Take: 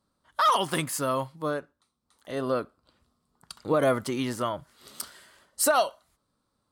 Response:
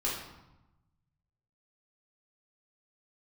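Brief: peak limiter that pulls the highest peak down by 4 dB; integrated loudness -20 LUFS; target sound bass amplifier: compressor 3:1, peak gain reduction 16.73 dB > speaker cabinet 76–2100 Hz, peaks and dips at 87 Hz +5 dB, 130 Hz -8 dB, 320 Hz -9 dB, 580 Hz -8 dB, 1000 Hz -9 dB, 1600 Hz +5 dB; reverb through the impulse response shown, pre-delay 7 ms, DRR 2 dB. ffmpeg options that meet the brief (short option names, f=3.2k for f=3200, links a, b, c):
-filter_complex "[0:a]alimiter=limit=-17dB:level=0:latency=1,asplit=2[a][b];[1:a]atrim=start_sample=2205,adelay=7[c];[b][c]afir=irnorm=-1:irlink=0,volume=-8dB[d];[a][d]amix=inputs=2:normalize=0,acompressor=threshold=-40dB:ratio=3,highpass=f=76:w=0.5412,highpass=f=76:w=1.3066,equalizer=f=87:t=q:w=4:g=5,equalizer=f=130:t=q:w=4:g=-8,equalizer=f=320:t=q:w=4:g=-9,equalizer=f=580:t=q:w=4:g=-8,equalizer=f=1k:t=q:w=4:g=-9,equalizer=f=1.6k:t=q:w=4:g=5,lowpass=f=2.1k:w=0.5412,lowpass=f=2.1k:w=1.3066,volume=25dB"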